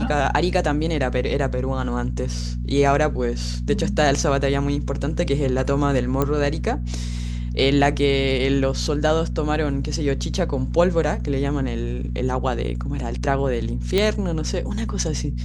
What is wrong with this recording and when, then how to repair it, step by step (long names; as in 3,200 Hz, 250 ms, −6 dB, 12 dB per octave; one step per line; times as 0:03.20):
mains hum 60 Hz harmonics 4 −26 dBFS
0:06.22: click −8 dBFS
0:13.98: click −7 dBFS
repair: click removal
hum removal 60 Hz, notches 4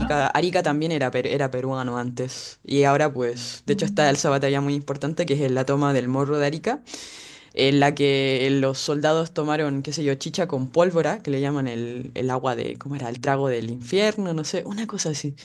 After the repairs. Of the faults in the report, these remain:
none of them is left